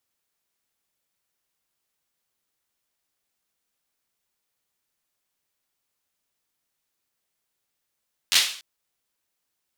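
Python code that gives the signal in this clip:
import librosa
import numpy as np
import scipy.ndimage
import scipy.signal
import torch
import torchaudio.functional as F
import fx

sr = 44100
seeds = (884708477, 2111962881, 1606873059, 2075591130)

y = fx.drum_clap(sr, seeds[0], length_s=0.29, bursts=4, spacing_ms=11, hz=3500.0, decay_s=0.48)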